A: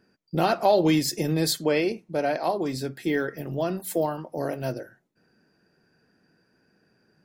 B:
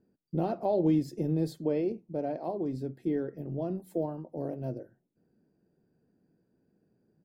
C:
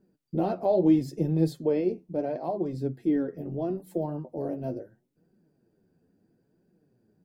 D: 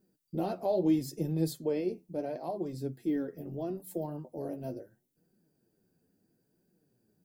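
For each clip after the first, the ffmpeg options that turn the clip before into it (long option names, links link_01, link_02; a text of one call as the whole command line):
ffmpeg -i in.wav -af "firequalizer=gain_entry='entry(300,0);entry(1400,-18);entry(6100,-21)':delay=0.05:min_phase=1,volume=-3.5dB" out.wav
ffmpeg -i in.wav -af "flanger=delay=5:depth=7.1:regen=34:speed=0.75:shape=triangular,volume=7dB" out.wav
ffmpeg -i in.wav -af "crystalizer=i=3:c=0,volume=-6dB" out.wav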